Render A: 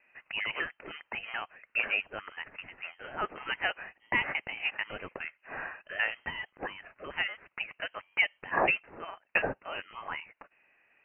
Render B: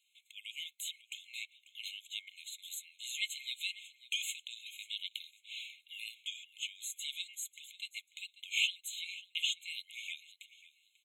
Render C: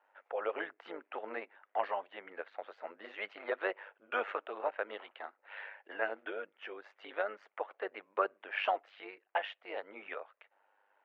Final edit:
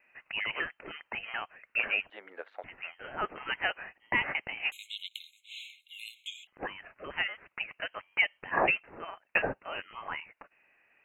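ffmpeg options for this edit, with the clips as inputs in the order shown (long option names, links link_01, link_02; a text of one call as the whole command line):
ffmpeg -i take0.wav -i take1.wav -i take2.wav -filter_complex "[0:a]asplit=3[link_01][link_02][link_03];[link_01]atrim=end=2.102[link_04];[2:a]atrim=start=2.098:end=2.642[link_05];[link_02]atrim=start=2.638:end=4.722[link_06];[1:a]atrim=start=4.718:end=6.472[link_07];[link_03]atrim=start=6.468[link_08];[link_04][link_05]acrossfade=duration=0.004:curve1=hsin:curve2=hsin[link_09];[link_09][link_06]acrossfade=duration=0.004:curve1=hsin:curve2=hsin[link_10];[link_10][link_07]acrossfade=duration=0.004:curve1=hsin:curve2=hsin[link_11];[link_11][link_08]acrossfade=duration=0.004:curve1=hsin:curve2=hsin" out.wav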